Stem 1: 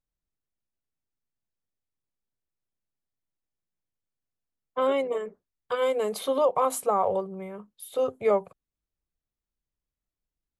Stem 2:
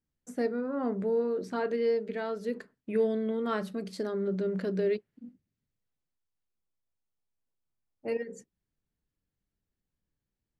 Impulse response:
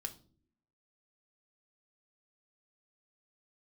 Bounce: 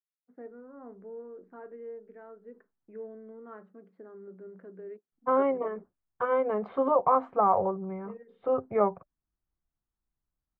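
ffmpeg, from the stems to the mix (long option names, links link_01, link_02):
-filter_complex "[0:a]equalizer=frequency=460:width_type=o:width=0.31:gain=-7.5,adelay=500,volume=2.5dB,asplit=3[link_01][link_02][link_03];[link_01]atrim=end=3.43,asetpts=PTS-STARTPTS,afade=type=out:start_time=3.426:duration=0.004:curve=hsin[link_04];[link_02]atrim=start=3.43:end=5.12,asetpts=PTS-STARTPTS,volume=0[link_05];[link_03]atrim=start=5.12,asetpts=PTS-STARTPTS,afade=type=in:duration=0.004:curve=hsin[link_06];[link_04][link_05][link_06]concat=n=3:v=0:a=1[link_07];[1:a]agate=range=-33dB:threshold=-45dB:ratio=3:detection=peak,highpass=250,volume=-14dB[link_08];[link_07][link_08]amix=inputs=2:normalize=0,lowpass=frequency=1600:width=0.5412,lowpass=frequency=1600:width=1.3066,bandreject=frequency=590:width=12"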